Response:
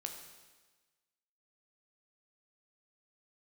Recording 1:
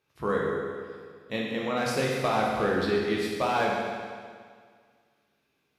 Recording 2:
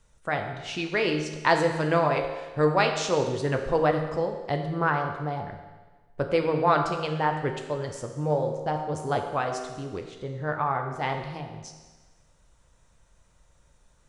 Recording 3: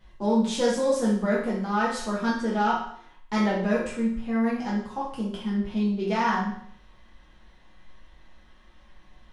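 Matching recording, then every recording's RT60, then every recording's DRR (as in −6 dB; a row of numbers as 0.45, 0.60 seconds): 2; 1.9, 1.3, 0.65 seconds; −3.5, 3.5, −7.5 decibels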